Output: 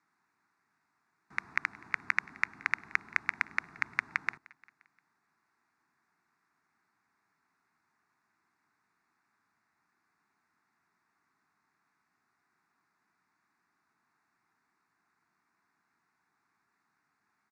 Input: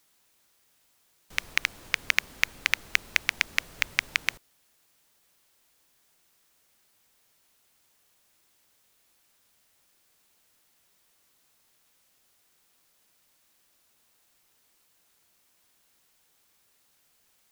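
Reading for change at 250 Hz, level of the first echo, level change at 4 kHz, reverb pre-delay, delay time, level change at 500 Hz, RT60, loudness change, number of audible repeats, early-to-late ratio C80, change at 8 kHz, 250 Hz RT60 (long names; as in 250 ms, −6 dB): −2.5 dB, −24.0 dB, −21.0 dB, no reverb audible, 175 ms, −9.5 dB, no reverb audible, −6.0 dB, 3, no reverb audible, −19.5 dB, no reverb audible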